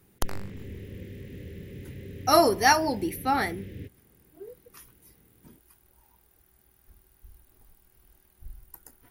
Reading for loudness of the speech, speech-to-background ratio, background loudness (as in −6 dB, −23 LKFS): −24.5 LKFS, 18.0 dB, −42.5 LKFS